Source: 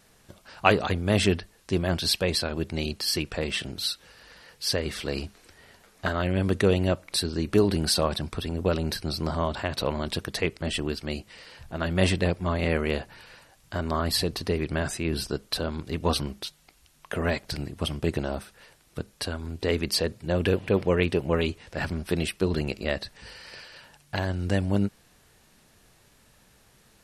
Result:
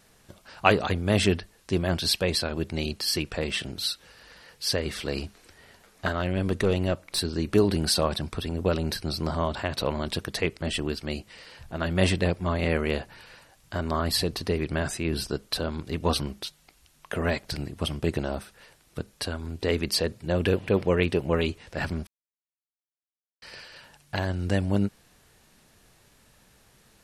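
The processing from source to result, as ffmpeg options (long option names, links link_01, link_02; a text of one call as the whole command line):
ffmpeg -i in.wav -filter_complex "[0:a]asettb=1/sr,asplit=3[link_01][link_02][link_03];[link_01]atrim=end=6.124[link_04];[link_02]atrim=start=6.12:end=7.19,asetpts=PTS-STARTPTS,afade=type=in:duration=0.004:curve=qsin,afade=type=out:start_time=1.066:duration=0.004:curve=qsin,aeval=exprs='(tanh(6.31*val(0)+0.4)-tanh(0.4))/6.31':channel_layout=same[link_05];[link_03]atrim=start=7.186[link_06];[link_04][link_05]acrossfade=duration=0.004:curve1=hsin:curve2=qsin[link_07];[link_07][link_06]acrossfade=duration=0.004:curve1=qsin:curve2=hsin,asplit=3[link_08][link_09][link_10];[link_08]atrim=end=22.07,asetpts=PTS-STARTPTS,afade=type=out:start_time=22.066:duration=0.004:curve=hsin[link_11];[link_09]atrim=start=22.07:end=23.42,asetpts=PTS-STARTPTS,volume=0[link_12];[link_10]atrim=start=23.42,asetpts=PTS-STARTPTS,afade=type=in:duration=0.004:curve=hsin[link_13];[link_11][link_12][link_13]concat=n=3:v=0:a=1" out.wav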